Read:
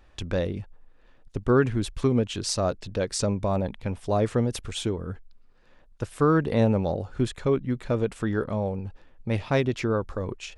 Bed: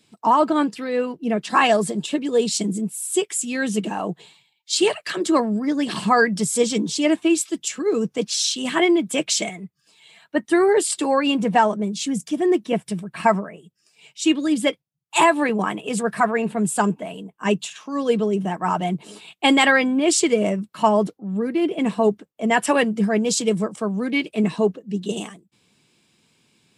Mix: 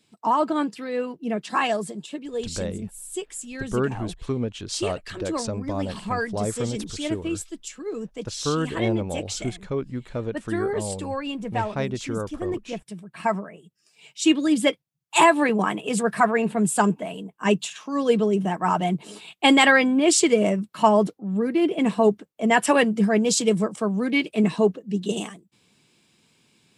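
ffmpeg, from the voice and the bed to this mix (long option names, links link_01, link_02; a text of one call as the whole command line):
ffmpeg -i stem1.wav -i stem2.wav -filter_complex "[0:a]adelay=2250,volume=-4dB[link_01];[1:a]volume=6dB,afade=type=out:start_time=1.35:duration=0.7:silence=0.501187,afade=type=in:start_time=12.96:duration=1.21:silence=0.298538[link_02];[link_01][link_02]amix=inputs=2:normalize=0" out.wav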